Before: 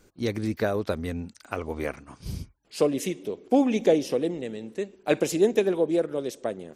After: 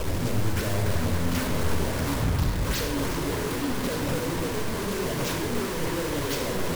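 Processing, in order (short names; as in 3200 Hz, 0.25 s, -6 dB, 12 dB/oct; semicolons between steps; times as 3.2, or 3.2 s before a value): infinite clipping; decimation with a swept rate 20×, swing 160% 2.8 Hz; high shelf 5900 Hz +11 dB; shoebox room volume 3800 m³, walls furnished, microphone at 5.1 m; in parallel at -11 dB: wrapped overs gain 19.5 dB; on the sum: low shelf 230 Hz +4.5 dB; on a send: delay with a stepping band-pass 0.292 s, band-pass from 1100 Hz, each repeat 0.7 oct, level -3.5 dB; on the sum: Doppler distortion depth 0.63 ms; gain -9 dB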